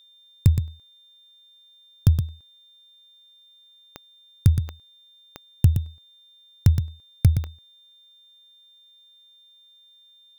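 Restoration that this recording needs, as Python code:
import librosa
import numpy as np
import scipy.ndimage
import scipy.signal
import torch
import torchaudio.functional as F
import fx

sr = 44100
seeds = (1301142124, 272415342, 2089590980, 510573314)

y = fx.fix_declick_ar(x, sr, threshold=10.0)
y = fx.notch(y, sr, hz=3600.0, q=30.0)
y = fx.fix_echo_inverse(y, sr, delay_ms=119, level_db=-8.5)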